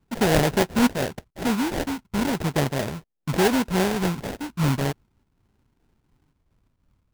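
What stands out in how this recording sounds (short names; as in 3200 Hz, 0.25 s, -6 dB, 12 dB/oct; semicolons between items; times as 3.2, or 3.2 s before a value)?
phasing stages 4, 0.4 Hz, lowest notch 510–3900 Hz; aliases and images of a low sample rate 1200 Hz, jitter 20%; noise-modulated level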